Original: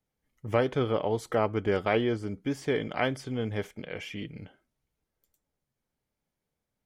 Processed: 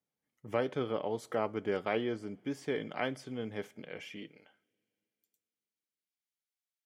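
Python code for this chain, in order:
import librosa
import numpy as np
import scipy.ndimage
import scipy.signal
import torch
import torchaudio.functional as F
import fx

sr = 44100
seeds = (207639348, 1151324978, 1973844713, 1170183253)

y = fx.filter_sweep_highpass(x, sr, from_hz=160.0, to_hz=2500.0, start_s=4.11, end_s=4.79, q=0.82)
y = fx.rev_double_slope(y, sr, seeds[0], early_s=0.39, late_s=2.9, knee_db=-19, drr_db=19.5)
y = F.gain(torch.from_numpy(y), -6.5).numpy()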